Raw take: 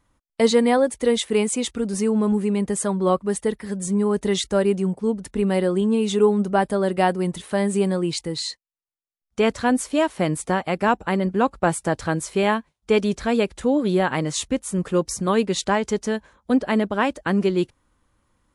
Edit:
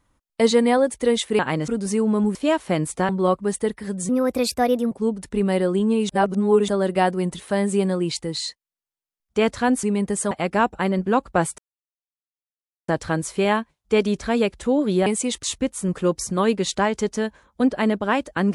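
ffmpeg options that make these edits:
-filter_complex "[0:a]asplit=14[s0][s1][s2][s3][s4][s5][s6][s7][s8][s9][s10][s11][s12][s13];[s0]atrim=end=1.392[s14];[s1]atrim=start=14.038:end=14.332[s15];[s2]atrim=start=1.758:end=2.432[s16];[s3]atrim=start=9.848:end=10.592[s17];[s4]atrim=start=2.908:end=3.914[s18];[s5]atrim=start=3.91:end=4.93,asetpts=PTS-STARTPTS,asetrate=54684,aresample=44100[s19];[s6]atrim=start=4.926:end=6.112[s20];[s7]atrim=start=6.108:end=6.702,asetpts=PTS-STARTPTS,areverse[s21];[s8]atrim=start=6.698:end=9.852[s22];[s9]atrim=start=2.428:end=2.912[s23];[s10]atrim=start=10.588:end=11.86,asetpts=PTS-STARTPTS,afade=t=out:st=1.268:d=0.004:c=hsin,apad=pad_dur=1.3[s24];[s11]atrim=start=11.86:end=14.042,asetpts=PTS-STARTPTS,afade=t=in:d=0.004:c=hsin[s25];[s12]atrim=start=1.388:end=1.762[s26];[s13]atrim=start=14.328[s27];[s14][s15]acrossfade=d=0.004:c1=hsin:c2=hsin[s28];[s28][s16]acrossfade=d=0.004:c1=hsin:c2=hsin[s29];[s29][s17]acrossfade=d=0.004:c1=hsin:c2=hsin[s30];[s30][s18]acrossfade=d=0.004:c1=hsin:c2=hsin[s31];[s31][s19]acrossfade=d=0.004:c1=hsin:c2=hsin[s32];[s32][s20]acrossfade=d=0.004:c1=hsin:c2=hsin[s33];[s33][s21]acrossfade=d=0.004:c1=hsin:c2=hsin[s34];[s34][s22]acrossfade=d=0.004:c1=hsin:c2=hsin[s35];[s35][s23]acrossfade=d=0.004:c1=hsin:c2=hsin[s36];[s24][s25]concat=n=2:v=0:a=1[s37];[s36][s37]acrossfade=d=0.004:c1=hsin:c2=hsin[s38];[s38][s26]acrossfade=d=0.004:c1=hsin:c2=hsin[s39];[s39][s27]acrossfade=d=0.004:c1=hsin:c2=hsin"

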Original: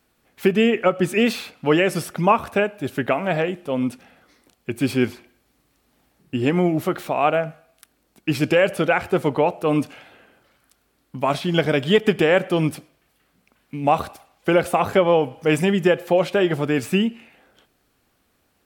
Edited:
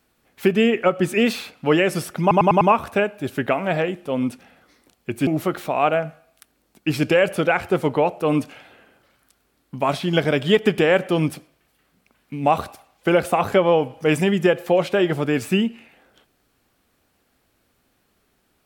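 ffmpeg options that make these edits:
-filter_complex "[0:a]asplit=6[s0][s1][s2][s3][s4][s5];[s0]atrim=end=2.312[s6];[s1]atrim=start=2.208:end=2.312[s7];[s2]atrim=start=2.208:end=2.312[s8];[s3]atrim=start=2.208:end=2.312[s9];[s4]atrim=start=2.208:end=4.872[s10];[s5]atrim=start=6.678[s11];[s6][s7]acrossfade=d=0.004:c1=hsin:c2=hsin[s12];[s12][s8]acrossfade=d=0.004:c1=hsin:c2=hsin[s13];[s13][s9]acrossfade=d=0.004:c1=hsin:c2=hsin[s14];[s14][s10]acrossfade=d=0.004:c1=hsin:c2=hsin[s15];[s15][s11]acrossfade=d=0.004:c1=hsin:c2=hsin"

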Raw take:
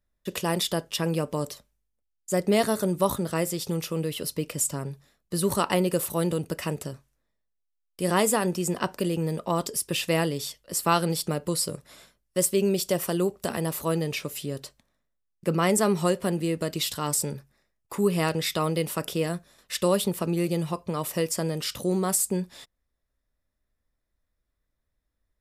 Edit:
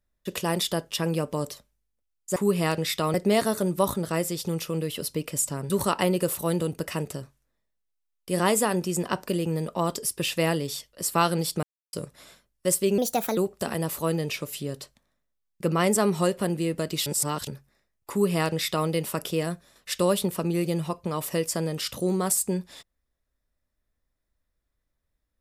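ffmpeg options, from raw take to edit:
-filter_complex "[0:a]asplit=10[s0][s1][s2][s3][s4][s5][s6][s7][s8][s9];[s0]atrim=end=2.362[s10];[s1]atrim=start=17.928:end=18.712[s11];[s2]atrim=start=2.358:end=4.922[s12];[s3]atrim=start=5.408:end=11.34,asetpts=PTS-STARTPTS,afade=t=out:st=5.928:d=0.004:c=hsin[s13];[s4]atrim=start=11.34:end=11.64,asetpts=PTS-STARTPTS,volume=0[s14];[s5]atrim=start=11.64:end=12.694,asetpts=PTS-STARTPTS,afade=t=in:d=0.004:c=hsin[s15];[s6]atrim=start=12.69:end=13.2,asetpts=PTS-STARTPTS,asetrate=57330,aresample=44100[s16];[s7]atrim=start=13.196:end=16.892[s17];[s8]atrim=start=16.888:end=17.302,asetpts=PTS-STARTPTS,areverse[s18];[s9]atrim=start=17.298[s19];[s10][s11]acrossfade=d=0.004:c1=hsin:c2=hsin[s20];[s20][s12]acrossfade=d=0.004:c1=hsin:c2=hsin[s21];[s13][s14][s15]concat=n=3:v=0:a=1[s22];[s21][s22]acrossfade=d=0.004:c1=hsin:c2=hsin[s23];[s23][s16]acrossfade=d=0.004:c1=hsin:c2=hsin[s24];[s24][s17]acrossfade=d=0.004:c1=hsin:c2=hsin[s25];[s25][s18]acrossfade=d=0.004:c1=hsin:c2=hsin[s26];[s26][s19]acrossfade=d=0.004:c1=hsin:c2=hsin"

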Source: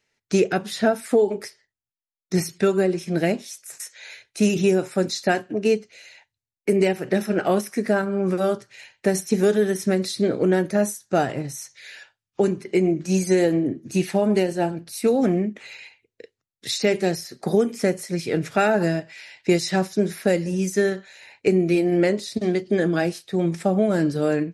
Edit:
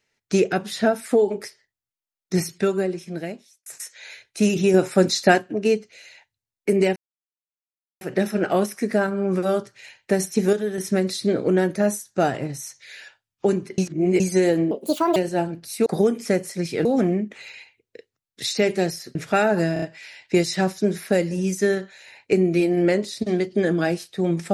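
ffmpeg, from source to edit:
-filter_complex "[0:a]asplit=17[s0][s1][s2][s3][s4][s5][s6][s7][s8][s9][s10][s11][s12][s13][s14][s15][s16];[s0]atrim=end=3.66,asetpts=PTS-STARTPTS,afade=t=out:st=2.44:d=1.22[s17];[s1]atrim=start=3.66:end=4.742,asetpts=PTS-STARTPTS,afade=t=in:d=0.004:c=hsin[s18];[s2]atrim=start=4.738:end=5.382,asetpts=PTS-STARTPTS,volume=1.78[s19];[s3]atrim=start=5.378:end=6.96,asetpts=PTS-STARTPTS,afade=t=out:st=1.578:d=0.004:c=hsin,apad=pad_dur=1.05[s20];[s4]atrim=start=6.96:end=9.482,asetpts=PTS-STARTPTS,afade=t=in:d=0.004:c=hsin[s21];[s5]atrim=start=9.478:end=9.732,asetpts=PTS-STARTPTS,volume=0.501[s22];[s6]atrim=start=9.728:end=12.732[s23];[s7]atrim=start=12.728:end=13.152,asetpts=PTS-STARTPTS,areverse[s24];[s8]atrim=start=13.148:end=13.664[s25];[s9]atrim=start=13.66:end=14.4,asetpts=PTS-STARTPTS,asetrate=72324,aresample=44100[s26];[s10]atrim=start=14.396:end=15.102[s27];[s11]atrim=start=17.398:end=18.392[s28];[s12]atrim=start=15.098:end=17.402[s29];[s13]atrim=start=18.388:end=19.002[s30];[s14]atrim=start=18.968:end=19.002[s31];[s15]atrim=start=18.968:end=19.002[s32];[s16]atrim=start=18.968[s33];[s17][s18]concat=n=2:v=0:a=1[s34];[s34][s19]acrossfade=d=0.004:c1=hsin:c2=hsin[s35];[s20][s21]concat=n=2:v=0:a=1[s36];[s35][s36]acrossfade=d=0.004:c1=hsin:c2=hsin[s37];[s37][s22]acrossfade=d=0.004:c1=hsin:c2=hsin[s38];[s38][s23]acrossfade=d=0.004:c1=hsin:c2=hsin[s39];[s39][s24]acrossfade=d=0.004:c1=hsin:c2=hsin[s40];[s40][s25]acrossfade=d=0.004:c1=hsin:c2=hsin[s41];[s41][s26]acrossfade=d=0.004:c1=hsin:c2=hsin[s42];[s42][s27]acrossfade=d=0.004:c1=hsin:c2=hsin[s43];[s43][s28]acrossfade=d=0.004:c1=hsin:c2=hsin[s44];[s44][s29]acrossfade=d=0.004:c1=hsin:c2=hsin[s45];[s45][s30]acrossfade=d=0.004:c1=hsin:c2=hsin[s46];[s46][s31]acrossfade=d=0.004:c1=hsin:c2=hsin[s47];[s47][s32]acrossfade=d=0.004:c1=hsin:c2=hsin[s48];[s48][s33]acrossfade=d=0.004:c1=hsin:c2=hsin"

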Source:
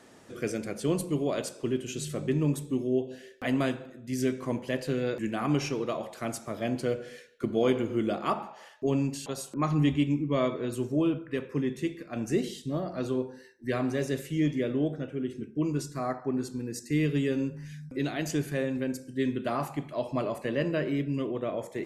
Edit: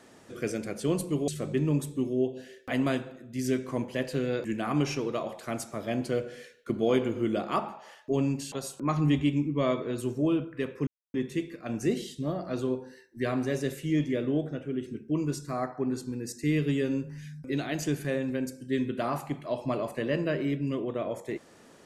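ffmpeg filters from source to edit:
-filter_complex "[0:a]asplit=3[s0][s1][s2];[s0]atrim=end=1.282[s3];[s1]atrim=start=2.018:end=11.61,asetpts=PTS-STARTPTS,afade=t=out:st=9.588:d=0.004:c=hsin,apad=pad_dur=0.27[s4];[s2]atrim=start=11.61,asetpts=PTS-STARTPTS,afade=t=in:d=0.004:c=hsin[s5];[s4][s5]concat=n=2:v=0:a=1[s6];[s3][s6]acrossfade=d=0.004:c1=hsin:c2=hsin"

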